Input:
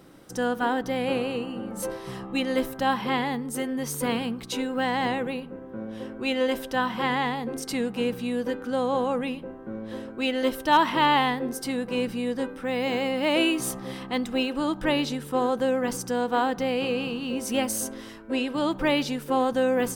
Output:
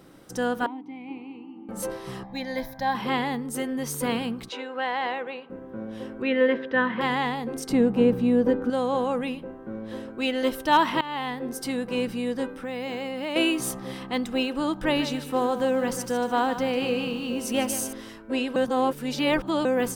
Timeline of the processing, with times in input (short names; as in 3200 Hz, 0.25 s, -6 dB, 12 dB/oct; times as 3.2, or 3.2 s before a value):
0.66–1.69 vowel filter u
2.23–2.95 fixed phaser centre 1900 Hz, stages 8
4.49–5.5 BPF 500–3400 Hz
6.22–7.01 speaker cabinet 120–3200 Hz, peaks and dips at 240 Hz +4 dB, 470 Hz +7 dB, 790 Hz -7 dB, 1800 Hz +9 dB, 2900 Hz -3 dB
7.69–8.7 tilt shelf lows +8.5 dB, about 1500 Hz
11.01–11.62 fade in, from -20 dB
12.46–13.36 compressor 2.5:1, threshold -29 dBFS
14.8–17.93 lo-fi delay 0.149 s, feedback 35%, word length 8-bit, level -11 dB
18.56–19.65 reverse